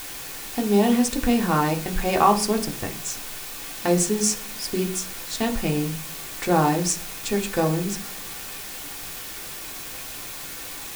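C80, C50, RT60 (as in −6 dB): 19.0 dB, 14.0 dB, 0.45 s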